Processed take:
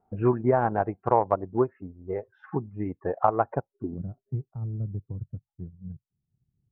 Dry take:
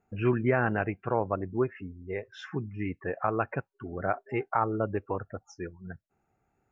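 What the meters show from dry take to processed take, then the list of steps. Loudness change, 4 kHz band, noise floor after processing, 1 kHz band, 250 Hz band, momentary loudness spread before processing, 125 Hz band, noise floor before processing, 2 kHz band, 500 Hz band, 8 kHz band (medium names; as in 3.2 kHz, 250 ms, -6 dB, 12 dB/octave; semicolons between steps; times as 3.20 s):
+3.0 dB, under -15 dB, under -85 dBFS, +4.5 dB, +1.5 dB, 15 LU, +2.5 dB, -78 dBFS, -7.5 dB, +3.0 dB, no reading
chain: low-pass sweep 890 Hz -> 140 Hz, 3.56–4.08 s; transient shaper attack +4 dB, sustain -5 dB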